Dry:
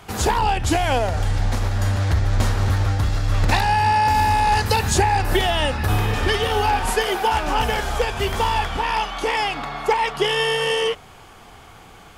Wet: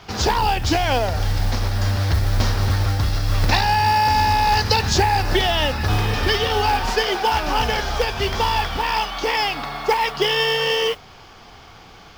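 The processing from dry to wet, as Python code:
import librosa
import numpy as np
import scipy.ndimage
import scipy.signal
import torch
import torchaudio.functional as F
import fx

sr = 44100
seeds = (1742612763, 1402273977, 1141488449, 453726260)

y = fx.high_shelf_res(x, sr, hz=7100.0, db=-11.5, q=3.0)
y = fx.mod_noise(y, sr, seeds[0], snr_db=24)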